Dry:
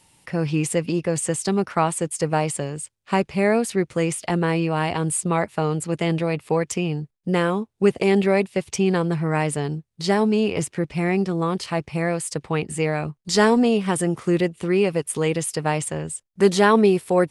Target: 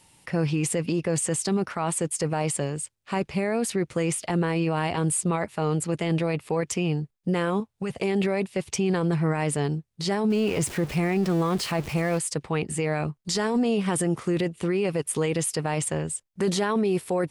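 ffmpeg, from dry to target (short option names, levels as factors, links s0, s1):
-filter_complex "[0:a]asettb=1/sr,asplit=3[s0][s1][s2];[s0]atrim=end=10.304[s3];[s1]atrim=start=10.3:end=12.19,asetpts=PTS-STARTPTS,afade=t=in:d=0.004:c=qsin,afade=t=out:st=1.886:d=0.004:c=qsin,aeval=exprs='val(0)+0.5*0.0237*sgn(val(0))':c=same[s4];[s2]atrim=start=12.186[s5];[s3][s4]acrossfade=d=0.004:c1=hsin:c2=qsin[s6];[s6][s5]acrossfade=d=0.004:c1=qsin:c2=hsin,alimiter=limit=0.141:level=0:latency=1:release=10,asettb=1/sr,asplit=3[s7][s8][s9];[s7]atrim=end=7.604[s10];[s8]atrim=start=7.6:end=8.02,asetpts=PTS-STARTPTS,afade=t=in:d=0.004:c=qsin,afade=t=out:st=0.416:d=0.004:c=qsin,equalizer=f=330:w=1.8:g=-12[s11];[s9]atrim=start=8.016[s12];[s10][s11]acrossfade=d=0.004:c1=hsin:c2=qsin[s13];[s13][s12]acrossfade=d=0.004:c1=qsin:c2=hsin"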